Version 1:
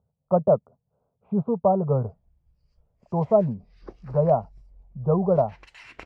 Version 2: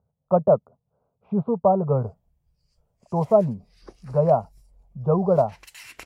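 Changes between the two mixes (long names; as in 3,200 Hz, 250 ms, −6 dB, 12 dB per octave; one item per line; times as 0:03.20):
background −4.5 dB
master: remove head-to-tape spacing loss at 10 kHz 28 dB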